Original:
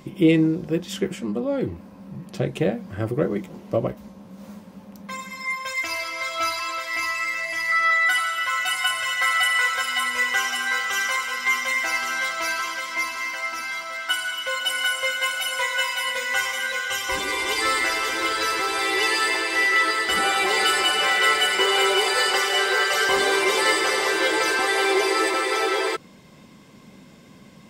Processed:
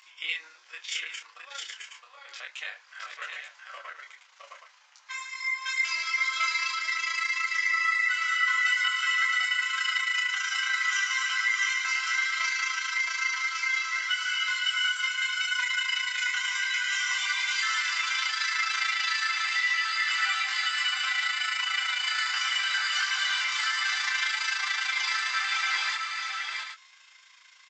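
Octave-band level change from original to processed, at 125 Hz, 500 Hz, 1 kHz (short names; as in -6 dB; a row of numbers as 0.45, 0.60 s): n/a, under -30 dB, -9.0 dB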